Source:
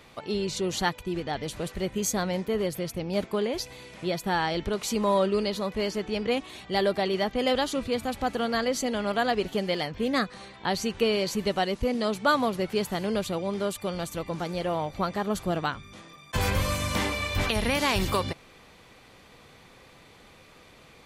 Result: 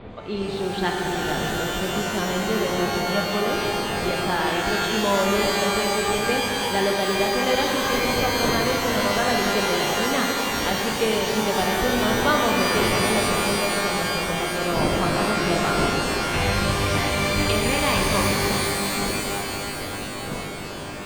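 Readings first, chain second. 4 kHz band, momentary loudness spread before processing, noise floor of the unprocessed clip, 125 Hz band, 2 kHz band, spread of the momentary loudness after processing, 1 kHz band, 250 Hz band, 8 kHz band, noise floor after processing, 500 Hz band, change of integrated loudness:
+8.5 dB, 8 LU, -53 dBFS, +5.5 dB, +9.5 dB, 5 LU, +7.0 dB, +5.0 dB, +9.0 dB, -31 dBFS, +4.5 dB, +6.0 dB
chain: wind noise 470 Hz -36 dBFS; steep low-pass 4 kHz; pitch-shifted reverb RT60 3.8 s, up +12 st, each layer -2 dB, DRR 0 dB

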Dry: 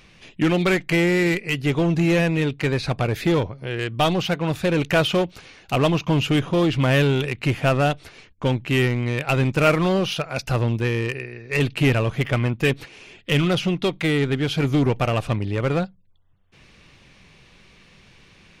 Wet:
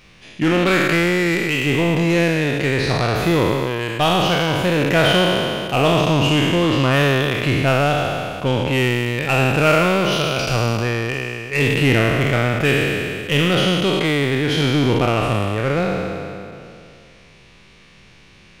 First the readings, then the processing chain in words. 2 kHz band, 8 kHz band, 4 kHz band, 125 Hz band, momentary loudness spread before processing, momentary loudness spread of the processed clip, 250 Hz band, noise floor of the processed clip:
+6.0 dB, +6.5 dB, +7.0 dB, +2.0 dB, 7 LU, 6 LU, +3.0 dB, -47 dBFS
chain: spectral sustain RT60 2.49 s

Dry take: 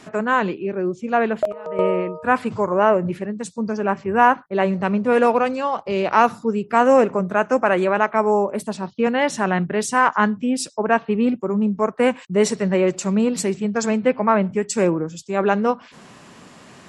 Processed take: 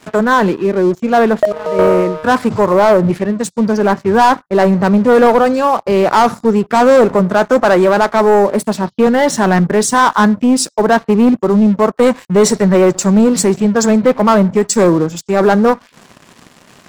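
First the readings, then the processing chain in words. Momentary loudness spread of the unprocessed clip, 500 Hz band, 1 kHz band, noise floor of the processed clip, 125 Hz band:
8 LU, +8.5 dB, +6.5 dB, -47 dBFS, +10.0 dB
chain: waveshaping leveller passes 3; dynamic bell 2.7 kHz, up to -7 dB, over -34 dBFS, Q 2

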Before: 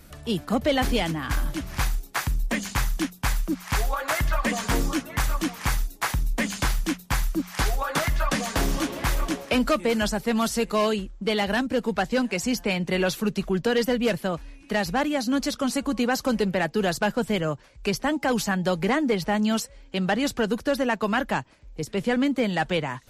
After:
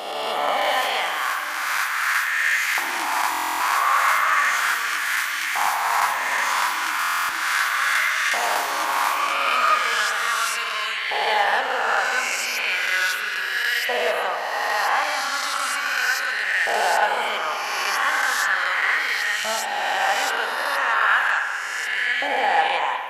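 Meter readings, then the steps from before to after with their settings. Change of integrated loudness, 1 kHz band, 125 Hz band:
+5.0 dB, +9.0 dB, under -30 dB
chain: reverse spectral sustain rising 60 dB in 1.97 s; high-pass 97 Hz; hum notches 60/120/180 Hz; in parallel at -1 dB: peak limiter -13.5 dBFS, peak gain reduction 6.5 dB; on the sum: hum 50 Hz, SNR 16 dB; LFO high-pass saw up 0.36 Hz 780–1900 Hz; on a send: repeats whose band climbs or falls 203 ms, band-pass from 2.9 kHz, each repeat -0.7 oct, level -11 dB; on the sum: spring tank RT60 1.5 s, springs 41/56 ms, chirp 75 ms, DRR 4 dB; buffer glitch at 3.30/6.99 s, samples 1024, times 12; trim -7 dB

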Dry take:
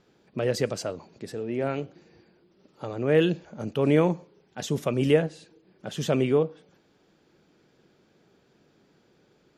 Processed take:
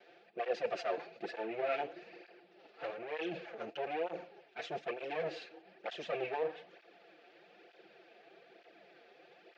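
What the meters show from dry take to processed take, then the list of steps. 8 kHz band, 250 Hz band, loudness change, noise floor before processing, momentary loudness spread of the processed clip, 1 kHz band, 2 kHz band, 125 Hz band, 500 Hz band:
under -20 dB, -20.5 dB, -13.0 dB, -64 dBFS, 17 LU, -3.0 dB, -7.0 dB, -29.5 dB, -12.0 dB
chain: comb filter that takes the minimum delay 5.8 ms; reverse; compression 12:1, threshold -38 dBFS, peak gain reduction 21.5 dB; reverse; cabinet simulation 420–4400 Hz, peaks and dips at 430 Hz +8 dB, 700 Hz +9 dB, 1 kHz -9 dB, 1.7 kHz +5 dB, 2.5 kHz +8 dB; cancelling through-zero flanger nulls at 1.1 Hz, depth 6.4 ms; trim +6.5 dB

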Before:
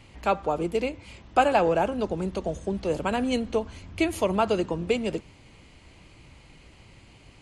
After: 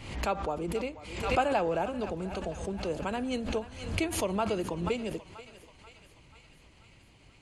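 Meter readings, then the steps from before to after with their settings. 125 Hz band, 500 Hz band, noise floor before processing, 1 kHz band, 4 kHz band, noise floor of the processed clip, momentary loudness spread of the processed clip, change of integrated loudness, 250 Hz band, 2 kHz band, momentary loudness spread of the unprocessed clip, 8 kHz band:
-2.5 dB, -6.0 dB, -53 dBFS, -6.0 dB, -3.0 dB, -58 dBFS, 9 LU, -5.5 dB, -5.5 dB, -4.5 dB, 9 LU, +1.0 dB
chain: thinning echo 484 ms, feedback 69%, high-pass 800 Hz, level -13 dB; swell ahead of each attack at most 67 dB/s; trim -7 dB

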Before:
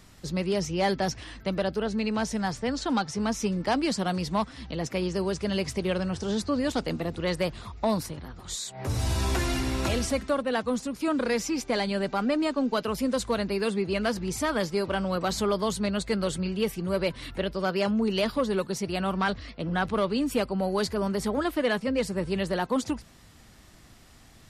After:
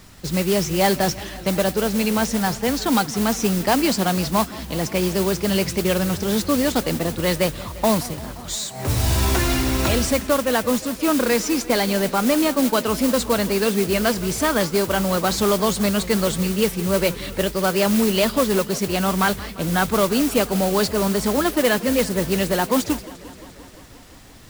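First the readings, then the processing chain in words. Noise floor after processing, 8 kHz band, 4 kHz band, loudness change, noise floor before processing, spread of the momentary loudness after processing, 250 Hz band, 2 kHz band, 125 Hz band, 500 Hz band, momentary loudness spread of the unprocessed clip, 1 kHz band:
-42 dBFS, +11.5 dB, +8.5 dB, +8.0 dB, -53 dBFS, 5 LU, +7.0 dB, +7.5 dB, +7.0 dB, +7.0 dB, 5 LU, +7.0 dB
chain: modulation noise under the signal 11 dB; modulated delay 174 ms, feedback 76%, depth 172 cents, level -19 dB; trim +7 dB

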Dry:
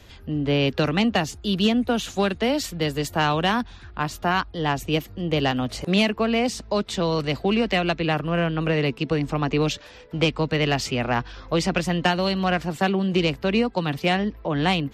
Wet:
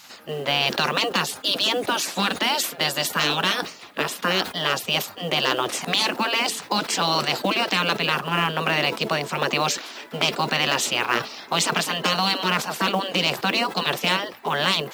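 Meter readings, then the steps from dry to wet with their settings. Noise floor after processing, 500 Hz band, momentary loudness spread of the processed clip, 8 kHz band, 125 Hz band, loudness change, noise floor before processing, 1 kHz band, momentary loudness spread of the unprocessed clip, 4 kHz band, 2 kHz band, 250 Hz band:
-42 dBFS, -3.5 dB, 4 LU, +8.5 dB, -7.5 dB, +1.0 dB, -45 dBFS, +2.5 dB, 5 LU, +6.5 dB, +4.0 dB, -7.5 dB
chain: high-pass 270 Hz 24 dB/octave; spectral gate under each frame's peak -10 dB weak; dynamic bell 2.1 kHz, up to -6 dB, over -41 dBFS, Q 1.5; in parallel at -2 dB: compressor with a negative ratio -33 dBFS, ratio -0.5; on the sum: companded quantiser 6-bit; decay stretcher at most 140 dB/s; trim +6.5 dB

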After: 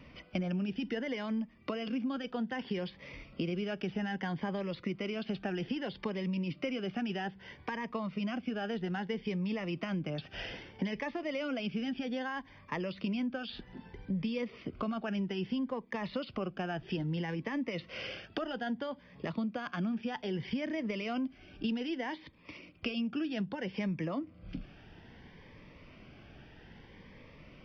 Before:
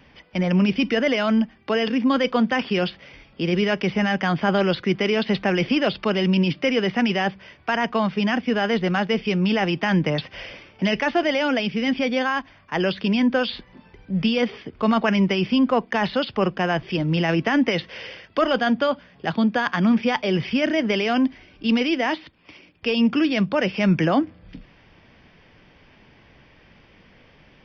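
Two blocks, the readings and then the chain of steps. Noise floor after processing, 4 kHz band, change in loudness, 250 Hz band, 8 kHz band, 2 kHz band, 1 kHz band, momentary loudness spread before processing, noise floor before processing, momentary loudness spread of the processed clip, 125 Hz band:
-57 dBFS, -16.0 dB, -15.0 dB, -14.0 dB, no reading, -16.0 dB, -16.5 dB, 7 LU, -54 dBFS, 16 LU, -13.0 dB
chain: treble shelf 3.7 kHz -7 dB; compression 12:1, threshold -31 dBFS, peak gain reduction 17.5 dB; Shepard-style phaser rising 0.62 Hz

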